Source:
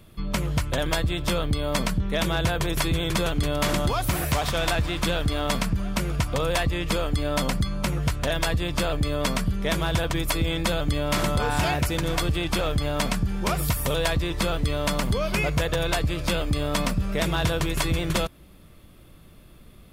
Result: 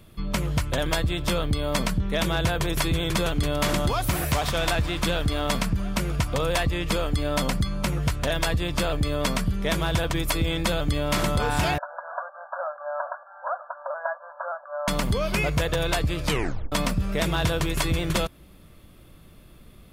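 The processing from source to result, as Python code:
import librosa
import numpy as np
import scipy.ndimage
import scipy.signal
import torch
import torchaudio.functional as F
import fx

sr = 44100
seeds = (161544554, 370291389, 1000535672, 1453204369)

y = fx.brickwall_bandpass(x, sr, low_hz=530.0, high_hz=1700.0, at=(11.78, 14.88))
y = fx.edit(y, sr, fx.tape_stop(start_s=16.26, length_s=0.46), tone=tone)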